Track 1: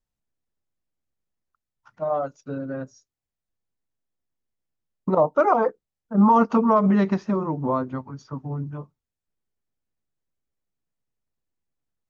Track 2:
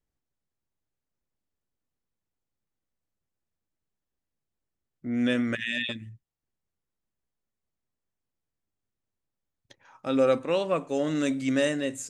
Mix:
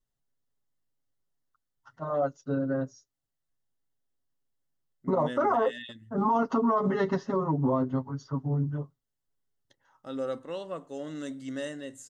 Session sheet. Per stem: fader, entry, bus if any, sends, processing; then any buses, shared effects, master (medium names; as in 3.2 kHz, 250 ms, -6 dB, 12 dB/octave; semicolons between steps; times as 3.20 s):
-3.5 dB, 0.00 s, no send, comb 7.3 ms, depth 91%
-10.5 dB, 0.00 s, no send, none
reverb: none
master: Butterworth band-stop 2.4 kHz, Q 4.6; peak limiter -17 dBFS, peak gain reduction 9.5 dB